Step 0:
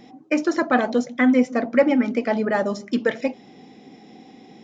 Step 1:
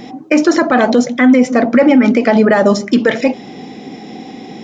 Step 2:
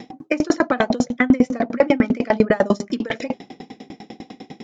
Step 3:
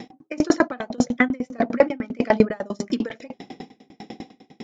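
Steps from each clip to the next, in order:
loudness maximiser +16.5 dB; trim -1 dB
sawtooth tremolo in dB decaying 10 Hz, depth 30 dB
trance gate "x....xxx" 199 bpm -12 dB

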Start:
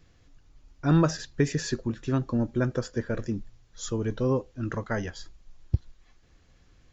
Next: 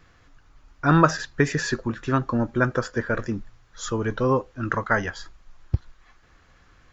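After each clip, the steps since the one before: peaking EQ 1.3 kHz +12 dB 1.7 oct; trim +1.5 dB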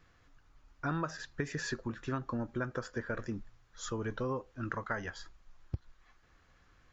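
compression 5:1, threshold -23 dBFS, peak gain reduction 11.5 dB; trim -9 dB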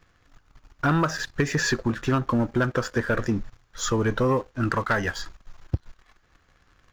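waveshaping leveller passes 2; trim +6.5 dB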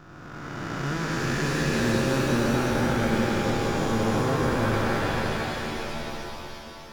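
spectral blur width 1040 ms; pitch-shifted reverb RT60 3.2 s, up +7 st, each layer -2 dB, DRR 3 dB; trim +3 dB

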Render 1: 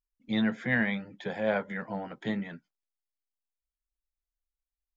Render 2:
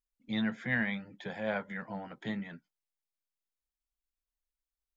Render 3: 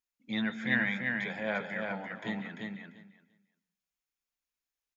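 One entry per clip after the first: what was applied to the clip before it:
dynamic bell 420 Hz, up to -5 dB, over -43 dBFS, Q 0.99; trim -3 dB
feedback delay 344 ms, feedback 15%, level -4 dB; reverberation RT60 0.45 s, pre-delay 125 ms, DRR 15.5 dB; trim -1 dB

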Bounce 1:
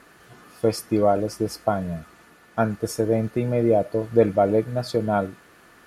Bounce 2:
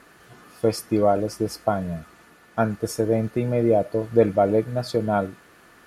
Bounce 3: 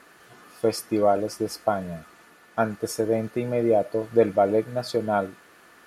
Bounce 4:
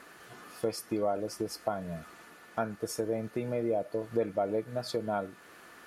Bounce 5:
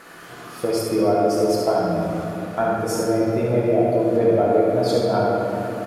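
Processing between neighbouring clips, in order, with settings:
no audible change
bass shelf 170 Hz -11 dB
compression 2:1, threshold -35 dBFS, peak gain reduction 12 dB
delay 72 ms -5.5 dB; simulated room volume 180 m³, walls hard, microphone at 0.71 m; trim +6.5 dB

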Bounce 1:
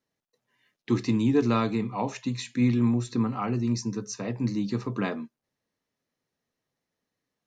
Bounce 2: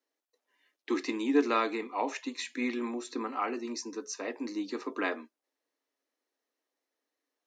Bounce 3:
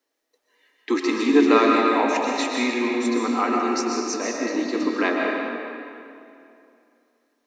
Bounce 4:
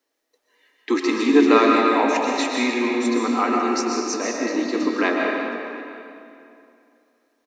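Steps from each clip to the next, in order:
elliptic high-pass 280 Hz, stop band 50 dB; dynamic bell 1.9 kHz, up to +6 dB, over -48 dBFS, Q 1.4; trim -1.5 dB
reverberation RT60 2.6 s, pre-delay 85 ms, DRR -1.5 dB; trim +8 dB
delay 720 ms -22.5 dB; trim +1.5 dB

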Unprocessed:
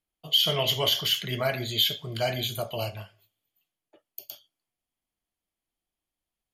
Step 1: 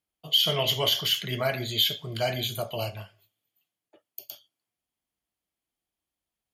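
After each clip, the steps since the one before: high-pass 48 Hz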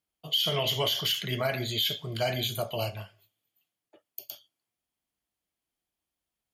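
peak limiter -18 dBFS, peak gain reduction 6.5 dB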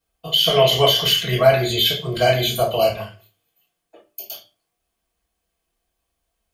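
reverberation RT60 0.30 s, pre-delay 3 ms, DRR -8 dB; trim -1 dB

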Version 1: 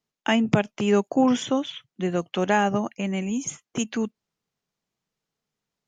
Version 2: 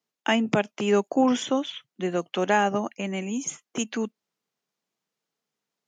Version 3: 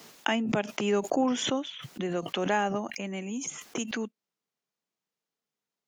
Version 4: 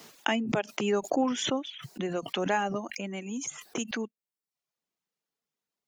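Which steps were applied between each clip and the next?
high-pass 220 Hz 12 dB/octave
swell ahead of each attack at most 52 dB/s; trim -5.5 dB
reverb removal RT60 0.59 s

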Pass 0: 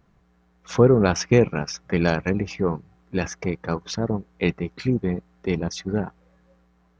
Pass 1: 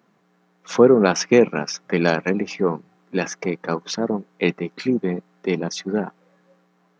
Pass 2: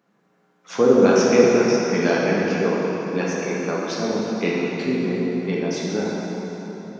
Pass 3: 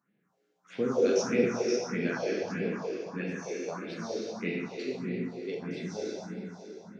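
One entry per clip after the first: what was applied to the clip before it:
high-pass 190 Hz 24 dB/octave; trim +3.5 dB
plate-style reverb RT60 4.3 s, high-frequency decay 0.7×, DRR -5.5 dB; trim -6 dB
phase shifter stages 4, 1.6 Hz, lowest notch 150–1100 Hz; trim -8.5 dB

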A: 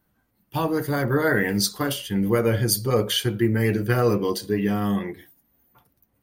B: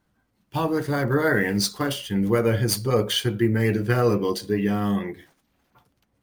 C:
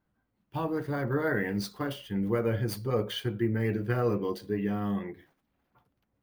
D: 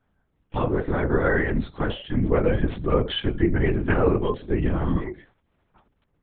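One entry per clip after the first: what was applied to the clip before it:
median filter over 3 samples
peaking EQ 7.5 kHz -11.5 dB 1.9 oct; trim -7 dB
LPC vocoder at 8 kHz whisper; trim +7.5 dB

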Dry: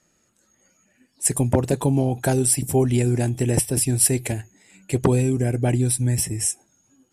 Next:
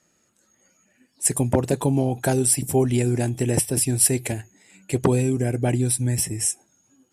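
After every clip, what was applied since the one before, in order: bass shelf 65 Hz -9.5 dB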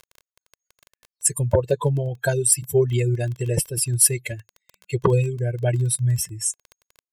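expander on every frequency bin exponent 2; crackle 15 per s -34 dBFS; comb 1.9 ms, depth 94%; trim +2 dB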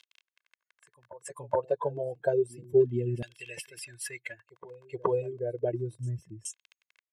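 Chebyshev shaper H 5 -31 dB, 7 -45 dB, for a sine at -1.5 dBFS; LFO band-pass saw down 0.31 Hz 220–3300 Hz; reverse echo 423 ms -20 dB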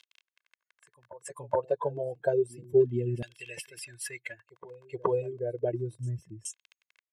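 no audible change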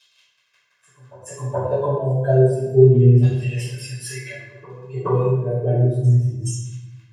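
reverberation RT60 1.1 s, pre-delay 3 ms, DRR -15.5 dB; trim -10 dB

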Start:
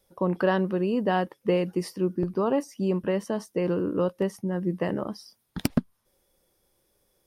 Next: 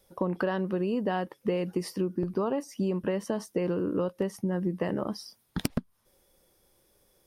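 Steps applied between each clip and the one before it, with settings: compression 6:1, threshold -29 dBFS, peak gain reduction 12.5 dB; trim +3.5 dB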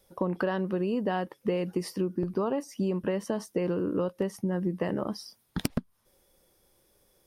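no audible change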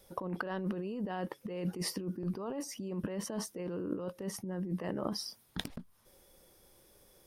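compressor with a negative ratio -35 dBFS, ratio -1; trim -2 dB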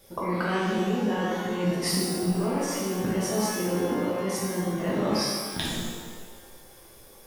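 pitch-shifted reverb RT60 1.4 s, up +12 st, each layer -8 dB, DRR -7 dB; trim +3.5 dB

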